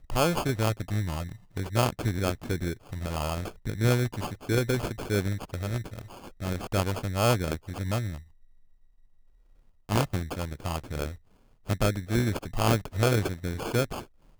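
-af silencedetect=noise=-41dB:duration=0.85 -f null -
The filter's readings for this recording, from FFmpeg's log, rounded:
silence_start: 8.20
silence_end: 9.89 | silence_duration: 1.69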